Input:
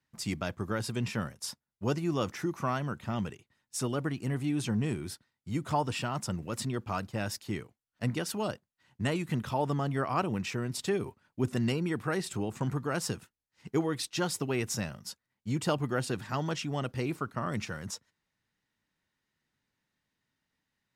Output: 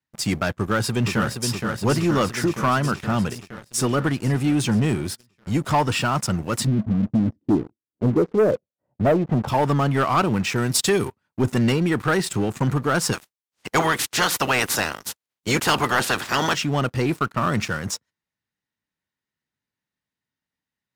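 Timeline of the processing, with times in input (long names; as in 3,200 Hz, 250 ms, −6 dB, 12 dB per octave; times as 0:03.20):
0:00.56–0:01.50: delay throw 470 ms, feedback 75%, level −6 dB
0:06.66–0:09.47: low-pass with resonance 190 Hz → 810 Hz
0:10.56–0:11.08: high-shelf EQ 3,300 Hz +9.5 dB
0:13.12–0:16.54: ceiling on every frequency bin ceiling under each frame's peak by 22 dB
whole clip: high-pass filter 43 Hz 12 dB per octave; dynamic equaliser 1,400 Hz, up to +4 dB, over −45 dBFS, Q 1.7; leveller curve on the samples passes 3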